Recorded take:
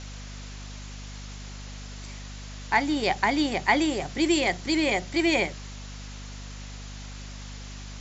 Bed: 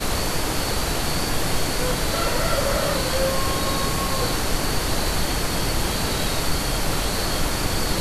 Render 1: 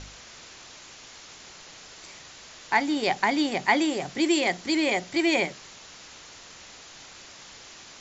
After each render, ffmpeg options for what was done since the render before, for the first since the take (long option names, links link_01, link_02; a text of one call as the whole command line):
ffmpeg -i in.wav -af "bandreject=frequency=50:width_type=h:width=4,bandreject=frequency=100:width_type=h:width=4,bandreject=frequency=150:width_type=h:width=4,bandreject=frequency=200:width_type=h:width=4,bandreject=frequency=250:width_type=h:width=4" out.wav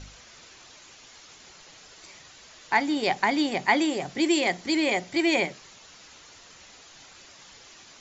ffmpeg -i in.wav -af "afftdn=noise_reduction=6:noise_floor=-47" out.wav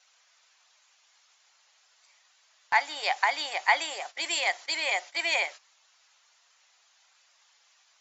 ffmpeg -i in.wav -af "highpass=frequency=700:width=0.5412,highpass=frequency=700:width=1.3066,agate=range=-14dB:threshold=-40dB:ratio=16:detection=peak" out.wav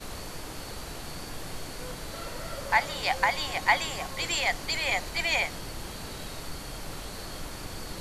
ffmpeg -i in.wav -i bed.wav -filter_complex "[1:a]volume=-15.5dB[link_01];[0:a][link_01]amix=inputs=2:normalize=0" out.wav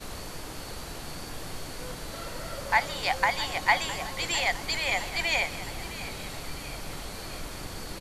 ffmpeg -i in.wav -af "aecho=1:1:660|1320|1980|2640|3300|3960:0.188|0.107|0.0612|0.0349|0.0199|0.0113" out.wav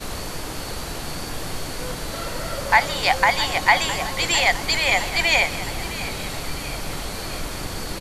ffmpeg -i in.wav -af "volume=8.5dB,alimiter=limit=-3dB:level=0:latency=1" out.wav